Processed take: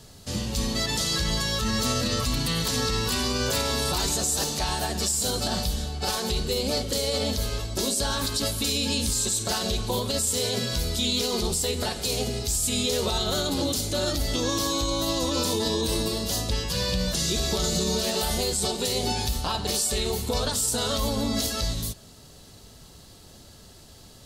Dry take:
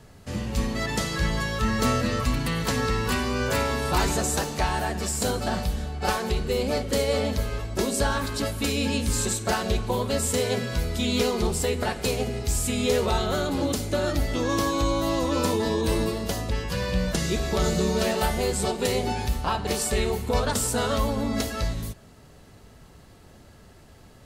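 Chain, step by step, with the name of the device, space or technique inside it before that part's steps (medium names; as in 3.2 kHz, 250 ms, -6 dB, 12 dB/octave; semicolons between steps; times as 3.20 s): over-bright horn tweeter (resonant high shelf 2.9 kHz +8.5 dB, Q 1.5; peak limiter -16 dBFS, peak gain reduction 10.5 dB)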